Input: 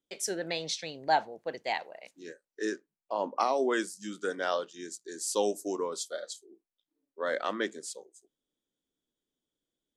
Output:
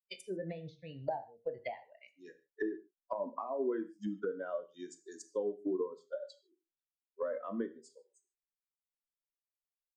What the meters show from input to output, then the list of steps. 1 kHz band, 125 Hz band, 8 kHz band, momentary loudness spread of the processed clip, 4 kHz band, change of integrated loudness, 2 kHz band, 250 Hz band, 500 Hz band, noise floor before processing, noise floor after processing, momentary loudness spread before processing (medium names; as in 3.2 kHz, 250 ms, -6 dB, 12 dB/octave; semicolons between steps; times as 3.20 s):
-12.5 dB, no reading, -21.0 dB, 14 LU, under -15 dB, -7.0 dB, -14.0 dB, -3.0 dB, -5.0 dB, under -85 dBFS, under -85 dBFS, 14 LU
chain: expander on every frequency bin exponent 2; doubling 22 ms -12 dB; compression 10:1, threshold -40 dBFS, peak gain reduction 18.5 dB; low-pass that closes with the level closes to 660 Hz, closed at -43 dBFS; gated-style reverb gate 170 ms falling, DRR 9.5 dB; trim +9.5 dB